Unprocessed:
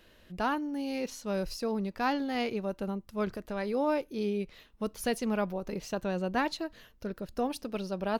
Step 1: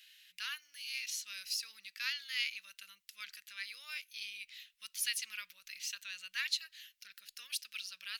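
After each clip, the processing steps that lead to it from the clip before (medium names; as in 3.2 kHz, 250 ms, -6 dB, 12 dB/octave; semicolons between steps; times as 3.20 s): inverse Chebyshev high-pass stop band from 840 Hz, stop band 50 dB; trim +5.5 dB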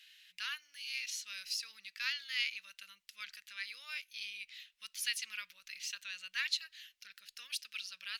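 treble shelf 8.9 kHz -10 dB; trim +1.5 dB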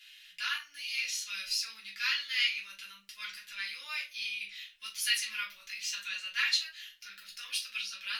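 simulated room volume 150 m³, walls furnished, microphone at 3.2 m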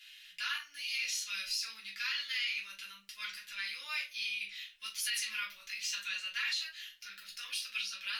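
peak limiter -25.5 dBFS, peak gain reduction 10 dB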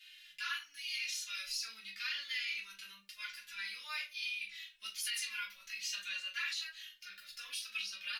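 endless flanger 2.8 ms -1 Hz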